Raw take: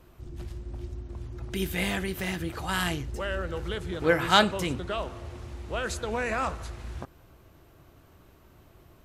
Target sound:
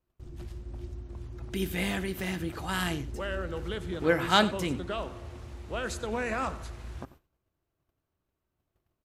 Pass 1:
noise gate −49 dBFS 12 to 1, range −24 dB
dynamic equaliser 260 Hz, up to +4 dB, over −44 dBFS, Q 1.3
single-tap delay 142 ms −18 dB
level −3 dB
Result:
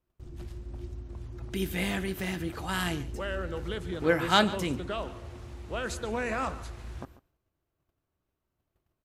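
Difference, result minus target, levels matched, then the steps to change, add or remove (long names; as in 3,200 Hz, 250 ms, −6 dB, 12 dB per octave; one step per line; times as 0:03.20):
echo 50 ms late
change: single-tap delay 92 ms −18 dB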